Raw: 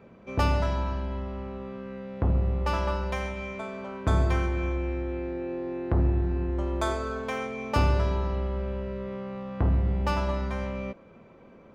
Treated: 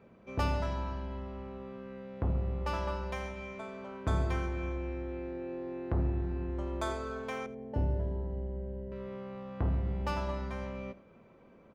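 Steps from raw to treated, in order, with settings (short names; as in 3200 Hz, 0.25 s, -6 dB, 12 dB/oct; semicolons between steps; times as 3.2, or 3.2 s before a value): 7.46–8.92 running mean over 36 samples; echo 84 ms -18.5 dB; gain -6.5 dB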